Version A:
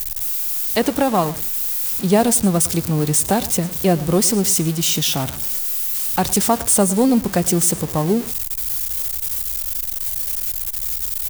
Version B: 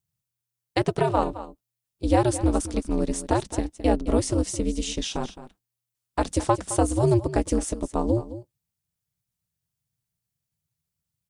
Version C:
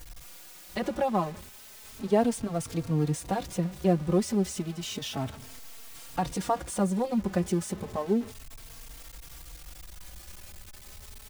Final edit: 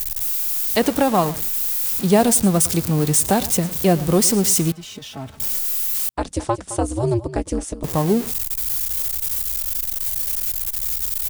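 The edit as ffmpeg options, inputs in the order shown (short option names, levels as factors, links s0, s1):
-filter_complex "[0:a]asplit=3[s0][s1][s2];[s0]atrim=end=4.722[s3];[2:a]atrim=start=4.718:end=5.402[s4];[s1]atrim=start=5.398:end=6.092[s5];[1:a]atrim=start=6.088:end=7.842[s6];[s2]atrim=start=7.838[s7];[s3][s4]acrossfade=d=0.004:c1=hsin:c2=hsin[s8];[s8][s5]acrossfade=d=0.004:c1=hsin:c2=hsin[s9];[s9][s6]acrossfade=d=0.004:c1=hsin:c2=hsin[s10];[s10][s7]acrossfade=d=0.004:c1=hsin:c2=hsin"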